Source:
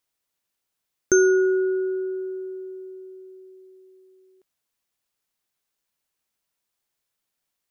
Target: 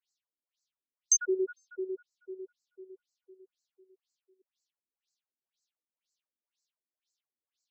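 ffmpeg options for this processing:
-filter_complex "[0:a]asettb=1/sr,asplit=3[a][b][c];[a]atrim=end=1.214[d];[b]atrim=start=1.21:end=1.84,asetpts=PTS-STARTPTS,afade=t=in:d=0.004:c=qsin,afade=t=out:st=0.626:d=0.004:c=qsin,aemphasis=mode=production:type=75kf[e];[c]atrim=start=1.836[f];[d][e]acrossfade=d=0.004:c1=hsin:c2=qsin[g];[g][f]acrossfade=d=0.004:c1=qsin:c2=hsin,aexciter=amount=4.2:drive=1:freq=2.8k,afftfilt=real='re*between(b*sr/1024,250*pow(5800/250,0.5+0.5*sin(2*PI*2*pts/sr))/1.41,250*pow(5800/250,0.5+0.5*sin(2*PI*2*pts/sr))*1.41)':imag='im*between(b*sr/1024,250*pow(5800/250,0.5+0.5*sin(2*PI*2*pts/sr))/1.41,250*pow(5800/250,0.5+0.5*sin(2*PI*2*pts/sr))*1.41)':win_size=1024:overlap=0.75,volume=-7.5dB"

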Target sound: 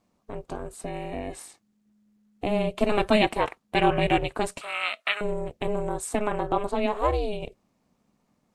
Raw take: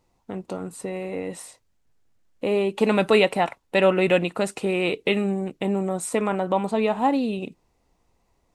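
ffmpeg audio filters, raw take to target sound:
-filter_complex "[0:a]aeval=exprs='val(0)*sin(2*PI*210*n/s)':c=same,asettb=1/sr,asplit=3[a][b][c];[a]atrim=end=4.614[d];[b]atrim=start=4.61:end=5.21,asetpts=PTS-STARTPTS,afade=t=in:d=0.004:c=qsin,afade=t=out:st=0.596:d=0.004:c=qsin,highpass=f=1.3k:t=q:w=14[e];[c]atrim=start=5.206[f];[d][e]acrossfade=d=0.004:c1=hsin:c2=qsin[g];[g][f]acrossfade=d=0.004:c1=qsin:c2=hsin"

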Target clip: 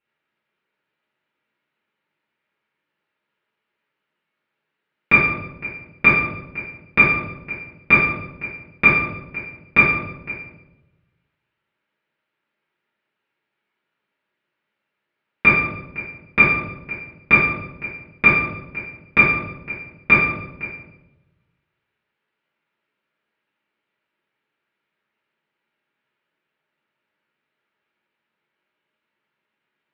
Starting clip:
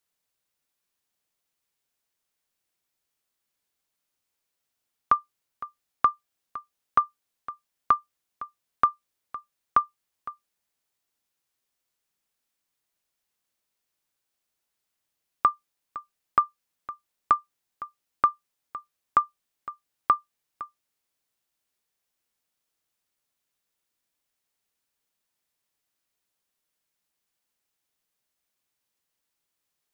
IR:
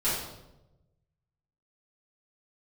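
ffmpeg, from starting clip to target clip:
-filter_complex "[0:a]aeval=exprs='0.398*(cos(1*acos(clip(val(0)/0.398,-1,1)))-cos(1*PI/2))+0.02*(cos(2*acos(clip(val(0)/0.398,-1,1)))-cos(2*PI/2))+0.0355*(cos(4*acos(clip(val(0)/0.398,-1,1)))-cos(4*PI/2))':c=same,aeval=exprs='abs(val(0))':c=same,highpass=220,equalizer=f=260:t=q:w=4:g=-3,equalizer=f=470:t=q:w=4:g=-5,equalizer=f=730:t=q:w=4:g=-9,equalizer=f=1.1k:t=q:w=4:g=-5,lowpass=f=2.6k:w=0.5412,lowpass=f=2.6k:w=1.3066[a];[1:a]atrim=start_sample=2205[b];[a][b]afir=irnorm=-1:irlink=0,volume=8dB"

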